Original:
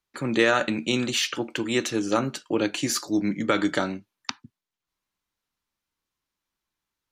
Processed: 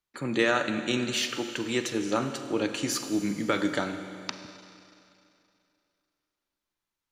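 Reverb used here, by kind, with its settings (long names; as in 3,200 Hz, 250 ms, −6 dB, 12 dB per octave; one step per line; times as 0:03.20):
four-comb reverb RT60 2.7 s, combs from 33 ms, DRR 8 dB
level −4 dB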